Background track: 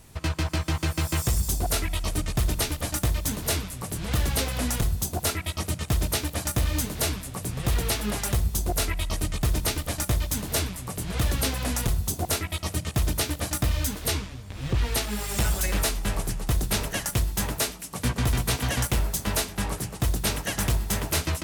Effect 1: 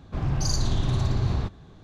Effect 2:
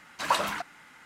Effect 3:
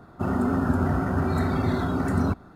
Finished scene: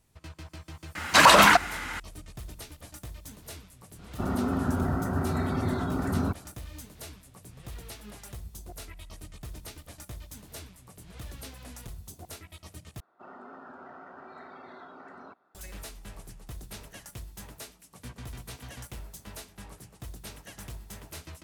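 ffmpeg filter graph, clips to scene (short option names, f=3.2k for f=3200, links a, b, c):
-filter_complex "[3:a]asplit=2[a][b];[0:a]volume=-17.5dB[c];[2:a]alimiter=level_in=21.5dB:limit=-1dB:release=50:level=0:latency=1[d];[b]highpass=540,lowpass=3.3k[e];[c]asplit=2[f][g];[f]atrim=end=13.004[h];[e]atrim=end=2.55,asetpts=PTS-STARTPTS,volume=-15dB[i];[g]atrim=start=15.546[j];[d]atrim=end=1.05,asetpts=PTS-STARTPTS,volume=-4.5dB,afade=t=in:d=0.004:c=hsin,afade=t=out:st=1.046:d=0.004:c=hsin,adelay=950[k];[a]atrim=end=2.55,asetpts=PTS-STARTPTS,volume=-4.5dB,afade=t=in:d=0.004:c=hsin,afade=t=out:st=2.546:d=0.004:c=hsin,adelay=3990[l];[h][i]acrossfade=d=0.004:c1=hsin:c2=hsin[m];[m][j]acrossfade=d=0.004:c1=hsin:c2=hsin[n];[n][k][l]amix=inputs=3:normalize=0"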